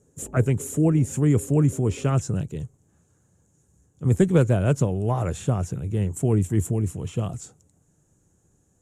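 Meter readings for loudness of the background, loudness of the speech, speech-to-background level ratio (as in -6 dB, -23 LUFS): -43.5 LUFS, -23.5 LUFS, 20.0 dB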